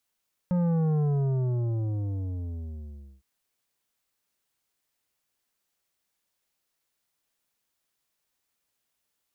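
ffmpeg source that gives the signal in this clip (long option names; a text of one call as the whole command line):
ffmpeg -f lavfi -i "aevalsrc='0.0708*clip((2.71-t)/2.23,0,1)*tanh(3.16*sin(2*PI*180*2.71/log(65/180)*(exp(log(65/180)*t/2.71)-1)))/tanh(3.16)':duration=2.71:sample_rate=44100" out.wav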